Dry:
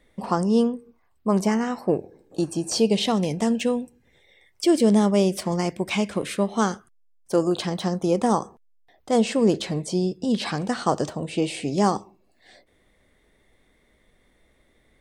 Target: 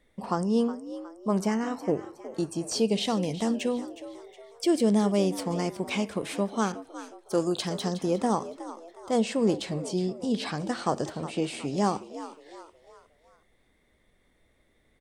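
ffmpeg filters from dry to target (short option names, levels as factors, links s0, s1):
-filter_complex "[0:a]asplit=5[s0][s1][s2][s3][s4];[s1]adelay=365,afreqshift=78,volume=0.2[s5];[s2]adelay=730,afreqshift=156,volume=0.0841[s6];[s3]adelay=1095,afreqshift=234,volume=0.0351[s7];[s4]adelay=1460,afreqshift=312,volume=0.0148[s8];[s0][s5][s6][s7][s8]amix=inputs=5:normalize=0,asettb=1/sr,asplit=3[s9][s10][s11];[s9]atrim=end=6.724[s12];[s10]atrim=start=6.72:end=8.04,asetpts=PTS-STARTPTS,afade=t=in:d=0.004:c=qsin,afade=t=out:st=1.316:d=0.004:c=qsin,adynamicequalizer=threshold=0.00708:dfrequency=3500:dqfactor=0.7:tfrequency=3500:tqfactor=0.7:attack=5:release=100:ratio=0.375:range=3:mode=boostabove:tftype=highshelf[s13];[s11]atrim=start=8.036[s14];[s12][s13]acrossfade=d=0.004:c1=hsin:c2=qsin[s15];[s15][s14]acrossfade=d=0.004:c1=qsin:c2=hsin,volume=0.562"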